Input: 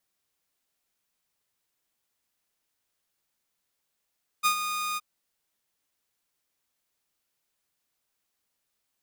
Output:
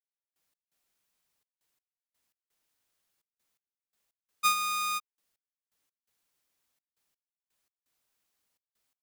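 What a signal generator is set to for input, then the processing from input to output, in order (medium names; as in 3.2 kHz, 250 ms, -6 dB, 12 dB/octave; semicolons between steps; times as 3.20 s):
ADSR saw 1.23 kHz, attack 29 ms, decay 88 ms, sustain -9.5 dB, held 0.54 s, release 31 ms -16.5 dBFS
trance gate "..x.xxxx.x" 84 bpm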